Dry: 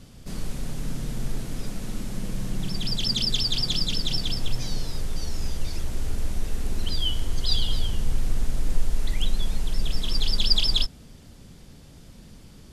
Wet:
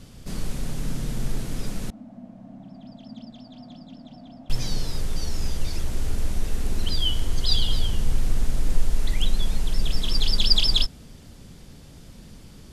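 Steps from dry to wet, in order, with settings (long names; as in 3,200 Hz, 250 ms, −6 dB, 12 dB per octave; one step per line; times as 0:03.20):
0:01.90–0:04.50: pair of resonant band-passes 410 Hz, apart 1.4 octaves
level +2 dB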